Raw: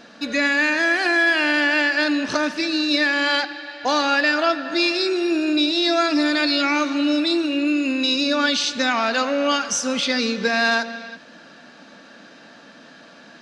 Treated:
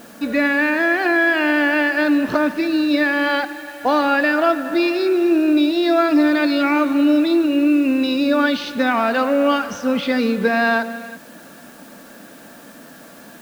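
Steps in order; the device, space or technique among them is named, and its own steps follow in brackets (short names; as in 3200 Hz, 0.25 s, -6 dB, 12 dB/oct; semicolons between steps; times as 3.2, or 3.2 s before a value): cassette deck with a dirty head (tape spacing loss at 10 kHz 36 dB; wow and flutter 11 cents; white noise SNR 30 dB); gain +6.5 dB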